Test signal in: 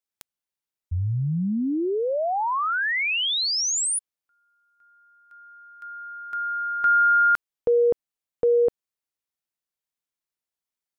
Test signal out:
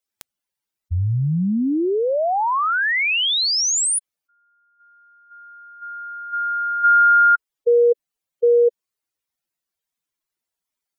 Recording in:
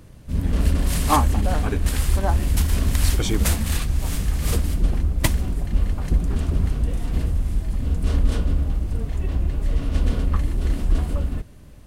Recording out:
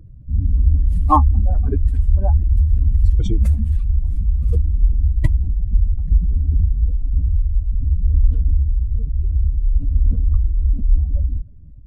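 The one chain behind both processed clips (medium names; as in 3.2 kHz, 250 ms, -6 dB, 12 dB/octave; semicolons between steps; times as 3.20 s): spectral contrast enhancement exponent 2.2; trim +5 dB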